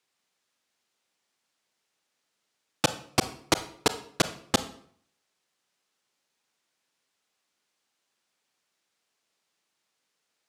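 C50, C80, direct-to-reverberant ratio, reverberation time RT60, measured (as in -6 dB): 13.5 dB, 17.0 dB, 11.0 dB, 0.60 s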